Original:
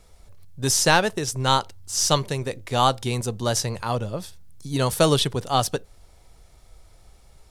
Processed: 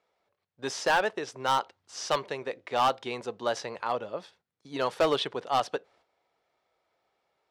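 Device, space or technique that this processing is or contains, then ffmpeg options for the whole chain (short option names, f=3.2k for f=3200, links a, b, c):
walkie-talkie: -af "highpass=420,lowpass=2.8k,asoftclip=type=hard:threshold=-16dB,agate=range=-10dB:threshold=-58dB:ratio=16:detection=peak,volume=-2dB"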